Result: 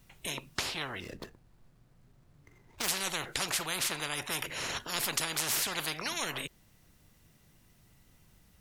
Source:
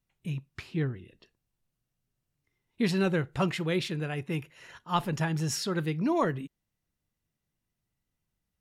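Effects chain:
0:01.00–0:02.88: running median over 15 samples
de-essing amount 60%
every bin compressed towards the loudest bin 10 to 1

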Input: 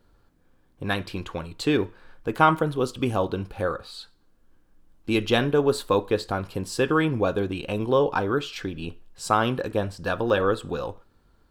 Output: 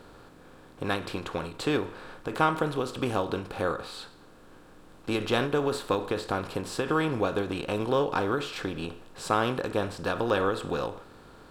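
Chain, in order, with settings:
compressor on every frequency bin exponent 0.6
every ending faded ahead of time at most 130 dB per second
level −7 dB

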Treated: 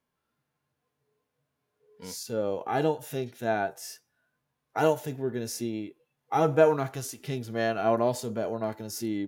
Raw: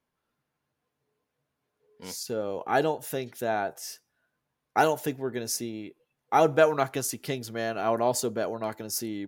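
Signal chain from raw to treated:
harmonic and percussive parts rebalanced percussive −14 dB
level +4 dB

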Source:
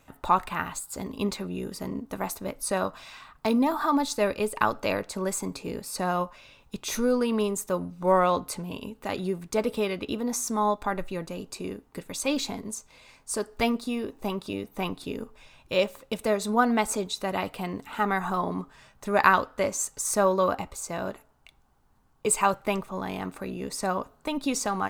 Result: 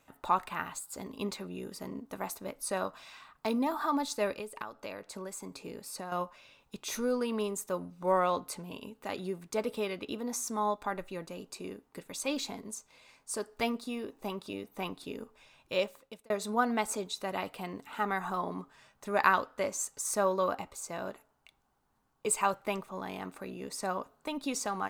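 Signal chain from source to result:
low-shelf EQ 120 Hz −11 dB
0:04.34–0:06.12: downward compressor 5 to 1, threshold −33 dBFS, peak gain reduction 14 dB
0:15.78–0:16.30: fade out
level −5.5 dB

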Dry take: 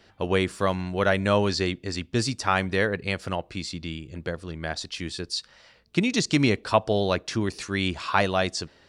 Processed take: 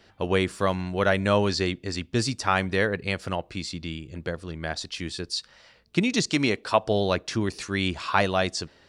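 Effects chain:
0:06.29–0:06.82: low-shelf EQ 160 Hz −11 dB

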